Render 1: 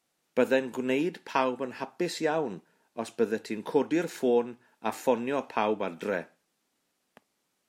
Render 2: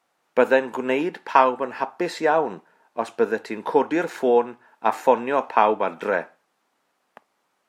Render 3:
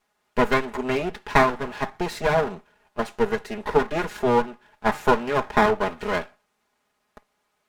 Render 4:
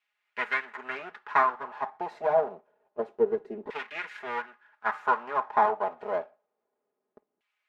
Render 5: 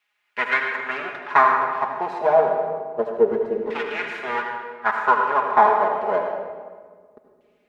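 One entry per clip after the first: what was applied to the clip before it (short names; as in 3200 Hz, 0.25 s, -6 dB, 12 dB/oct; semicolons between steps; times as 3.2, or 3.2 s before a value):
bell 1000 Hz +14.5 dB 2.6 oct; gain -2 dB
minimum comb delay 4.8 ms
LFO band-pass saw down 0.27 Hz 320–2600 Hz
reverb RT60 1.6 s, pre-delay 69 ms, DRR 3 dB; gain +7 dB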